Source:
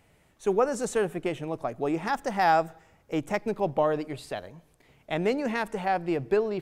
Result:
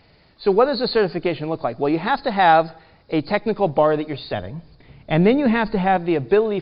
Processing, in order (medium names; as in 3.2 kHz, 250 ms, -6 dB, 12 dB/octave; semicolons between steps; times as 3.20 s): knee-point frequency compression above 3.5 kHz 4:1; 4.33–5.97 s: tone controls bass +10 dB, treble -5 dB; trim +8 dB